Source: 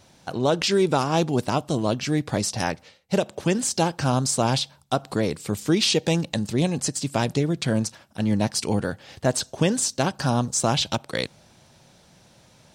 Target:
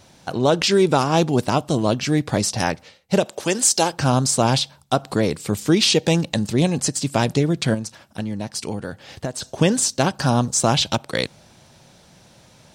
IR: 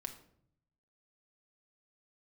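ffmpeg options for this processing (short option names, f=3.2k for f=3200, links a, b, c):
-filter_complex "[0:a]asettb=1/sr,asplit=3[a][b][c];[a]atrim=end=3.254[d];[b]atrim=start=3.25:end=3.93,asetpts=PTS-STARTPTS,afade=t=in:d=0.004:c=qsin,afade=t=out:st=0.676:d=0.004:c=qsin,bass=f=250:g=-12,treble=f=4k:g=6[e];[c]atrim=start=3.926[f];[d][e]acrossfade=d=0.004:c1=hsin:c2=qsin[g];[g][f]acrossfade=d=0.004:c1=qsin:c2=hsin,asettb=1/sr,asplit=3[h][i][j];[h]atrim=end=7.744[k];[i]atrim=start=7.74:end=9.42,asetpts=PTS-STARTPTS,afade=t=in:d=0.004:c=qsin,afade=t=out:st=1.676:d=0.004:c=qsin,acompressor=threshold=-28dB:ratio=8[l];[j]atrim=start=9.416[m];[k][l]acrossfade=d=0.004:c1=hsin:c2=qsin[n];[n][m]acrossfade=d=0.004:c1=qsin:c2=hsin,volume=4dB"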